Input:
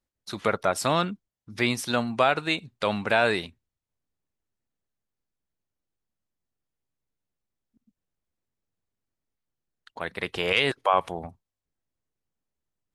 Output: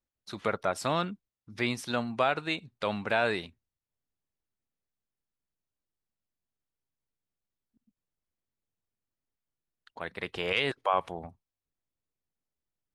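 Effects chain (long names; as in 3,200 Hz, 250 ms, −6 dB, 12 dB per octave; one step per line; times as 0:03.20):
high-shelf EQ 7,900 Hz −7.5 dB
level −5 dB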